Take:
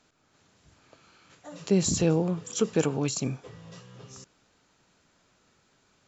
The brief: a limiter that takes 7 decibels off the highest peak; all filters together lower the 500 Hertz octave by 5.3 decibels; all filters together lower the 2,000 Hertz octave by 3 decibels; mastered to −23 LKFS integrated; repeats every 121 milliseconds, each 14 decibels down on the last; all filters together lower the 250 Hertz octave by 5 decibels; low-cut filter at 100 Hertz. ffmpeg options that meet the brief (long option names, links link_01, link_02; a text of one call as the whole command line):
ffmpeg -i in.wav -af "highpass=100,equalizer=frequency=250:width_type=o:gain=-6.5,equalizer=frequency=500:width_type=o:gain=-4,equalizer=frequency=2000:width_type=o:gain=-4,alimiter=limit=-22.5dB:level=0:latency=1,aecho=1:1:121|242:0.2|0.0399,volume=10.5dB" out.wav